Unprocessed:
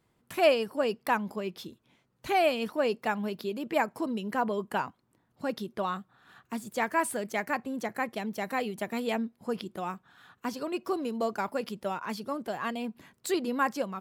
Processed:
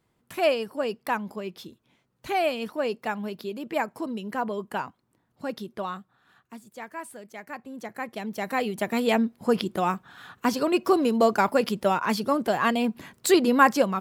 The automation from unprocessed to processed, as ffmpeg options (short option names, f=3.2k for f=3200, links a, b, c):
-af "volume=20dB,afade=t=out:st=5.74:d=0.93:silence=0.316228,afade=t=in:st=7.38:d=0.66:silence=0.398107,afade=t=in:st=8.04:d=1.5:silence=0.251189"